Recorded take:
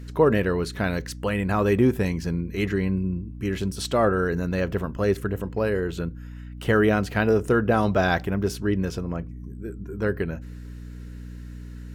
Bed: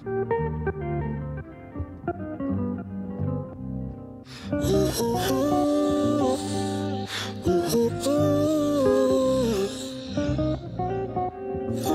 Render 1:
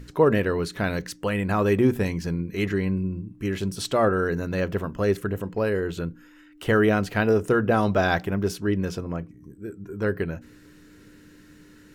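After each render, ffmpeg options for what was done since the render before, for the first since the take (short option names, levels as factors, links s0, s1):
-af "bandreject=f=60:t=h:w=6,bandreject=f=120:t=h:w=6,bandreject=f=180:t=h:w=6,bandreject=f=240:t=h:w=6"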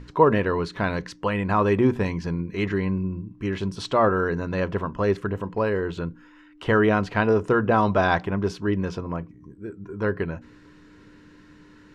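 -af "lowpass=4800,equalizer=f=1000:t=o:w=0.39:g=9.5"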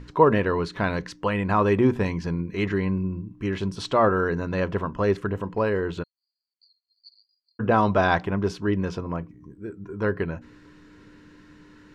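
-filter_complex "[0:a]asplit=3[s0][s1][s2];[s0]afade=t=out:st=6.02:d=0.02[s3];[s1]asuperpass=centerf=4500:order=20:qfactor=6.9,afade=t=in:st=6.02:d=0.02,afade=t=out:st=7.59:d=0.02[s4];[s2]afade=t=in:st=7.59:d=0.02[s5];[s3][s4][s5]amix=inputs=3:normalize=0"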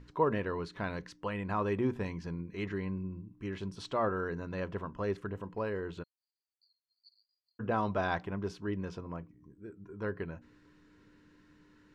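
-af "volume=0.266"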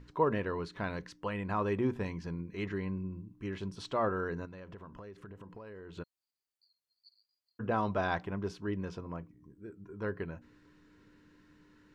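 -filter_complex "[0:a]asettb=1/sr,asplit=3[s0][s1][s2];[s0]atrim=end=4.454[s3];[s1]atrim=start=4.45:end=5.98,asetpts=PTS-STARTPTS,afade=t=in:d=0.004:c=qsin,afade=t=out:st=1.526:d=0.004:c=qsin,acompressor=threshold=0.00631:ratio=12:attack=3.2:release=140:knee=1:detection=peak[s4];[s2]atrim=start=5.976[s5];[s3][s4]acrossfade=d=0.004:c1=hsin:c2=qsin[s6];[s6][s5]acrossfade=d=0.004:c1=qsin:c2=hsin"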